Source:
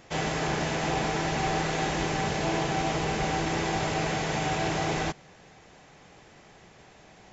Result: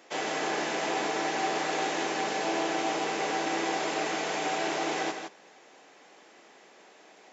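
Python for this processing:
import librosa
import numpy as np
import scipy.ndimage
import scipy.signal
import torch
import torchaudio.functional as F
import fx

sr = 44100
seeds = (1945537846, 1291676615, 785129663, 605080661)

p1 = scipy.signal.sosfilt(scipy.signal.butter(4, 270.0, 'highpass', fs=sr, output='sos'), x)
p2 = p1 + fx.echo_single(p1, sr, ms=163, db=-6.5, dry=0)
y = F.gain(torch.from_numpy(p2), -1.5).numpy()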